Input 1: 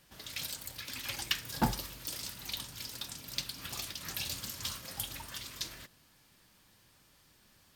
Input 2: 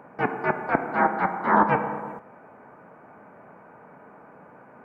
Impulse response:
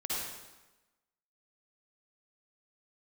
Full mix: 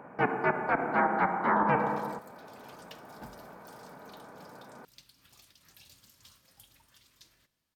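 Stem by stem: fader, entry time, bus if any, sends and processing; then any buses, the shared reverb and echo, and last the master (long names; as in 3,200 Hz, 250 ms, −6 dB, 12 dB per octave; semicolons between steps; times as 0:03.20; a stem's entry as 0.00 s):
−19.5 dB, 1.60 s, send −21.5 dB, no processing
−0.5 dB, 0.00 s, no send, no processing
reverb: on, RT60 1.1 s, pre-delay 47 ms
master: brickwall limiter −16 dBFS, peak gain reduction 10 dB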